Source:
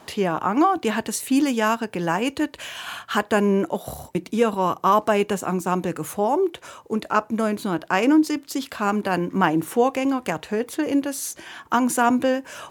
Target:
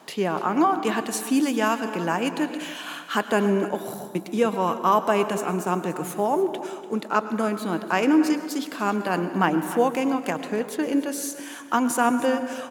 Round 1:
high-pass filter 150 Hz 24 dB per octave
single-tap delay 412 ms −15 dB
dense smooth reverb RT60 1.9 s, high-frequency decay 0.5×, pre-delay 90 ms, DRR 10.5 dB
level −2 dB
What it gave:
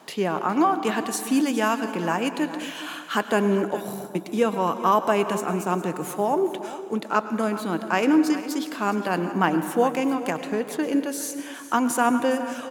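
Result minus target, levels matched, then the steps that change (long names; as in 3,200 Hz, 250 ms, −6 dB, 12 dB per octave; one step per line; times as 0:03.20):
echo 120 ms late
change: single-tap delay 292 ms −15 dB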